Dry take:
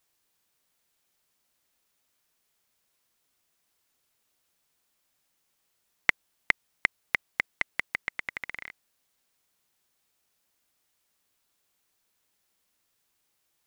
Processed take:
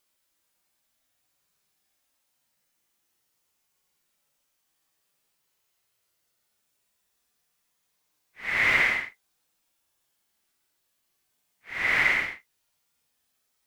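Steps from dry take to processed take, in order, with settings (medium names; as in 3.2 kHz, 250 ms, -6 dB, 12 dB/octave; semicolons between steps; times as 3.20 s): Paulstretch 8×, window 0.10 s, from 5.00 s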